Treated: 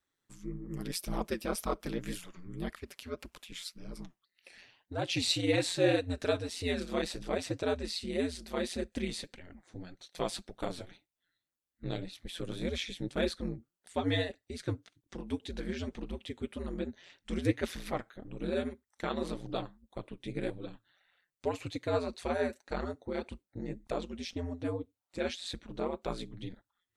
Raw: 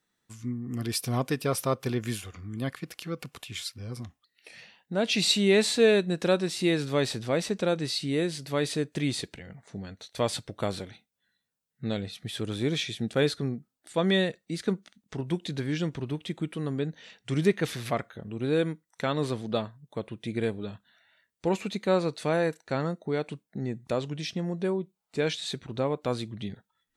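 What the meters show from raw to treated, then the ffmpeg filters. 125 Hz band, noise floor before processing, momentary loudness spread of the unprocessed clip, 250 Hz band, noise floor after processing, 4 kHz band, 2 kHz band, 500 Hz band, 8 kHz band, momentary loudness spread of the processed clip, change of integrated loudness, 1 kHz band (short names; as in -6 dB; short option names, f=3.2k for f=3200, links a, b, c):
-8.5 dB, -82 dBFS, 14 LU, -6.5 dB, under -85 dBFS, -6.5 dB, -6.5 dB, -7.0 dB, -7.0 dB, 15 LU, -6.5 dB, -5.0 dB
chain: -af "aeval=exprs='val(0)*sin(2*PI*88*n/s)':c=same,flanger=delay=0.7:depth=8.9:regen=28:speed=1.8:shape=triangular"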